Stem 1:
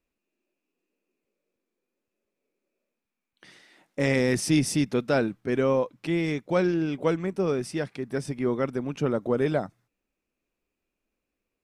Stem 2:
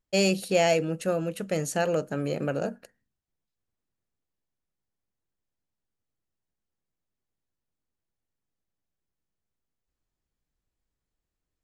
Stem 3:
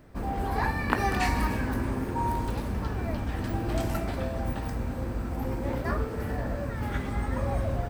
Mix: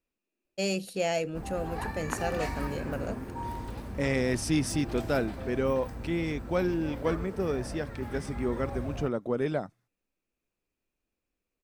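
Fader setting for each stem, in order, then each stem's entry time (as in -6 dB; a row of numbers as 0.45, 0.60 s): -4.5, -6.5, -8.0 dB; 0.00, 0.45, 1.20 s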